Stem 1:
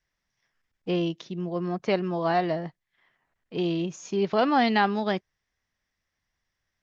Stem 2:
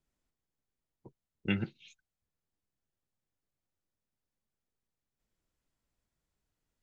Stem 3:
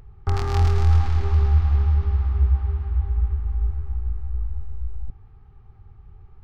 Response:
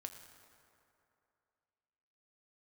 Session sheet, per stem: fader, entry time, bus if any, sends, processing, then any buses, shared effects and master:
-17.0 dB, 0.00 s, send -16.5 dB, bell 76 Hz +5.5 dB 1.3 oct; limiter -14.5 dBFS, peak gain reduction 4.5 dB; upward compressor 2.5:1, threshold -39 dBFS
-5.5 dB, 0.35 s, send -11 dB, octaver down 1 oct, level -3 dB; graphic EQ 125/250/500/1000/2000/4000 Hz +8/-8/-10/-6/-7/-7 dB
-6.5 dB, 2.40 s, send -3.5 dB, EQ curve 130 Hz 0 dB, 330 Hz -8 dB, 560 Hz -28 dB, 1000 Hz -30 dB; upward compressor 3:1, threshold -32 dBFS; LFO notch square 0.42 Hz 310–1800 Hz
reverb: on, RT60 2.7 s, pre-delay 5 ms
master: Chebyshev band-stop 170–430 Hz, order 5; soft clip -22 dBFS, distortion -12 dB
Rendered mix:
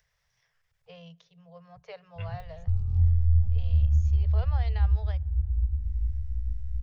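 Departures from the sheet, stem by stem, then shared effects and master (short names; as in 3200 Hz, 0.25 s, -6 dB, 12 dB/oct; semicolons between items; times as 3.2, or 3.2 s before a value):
stem 2: entry 0.35 s -> 0.70 s; master: missing soft clip -22 dBFS, distortion -12 dB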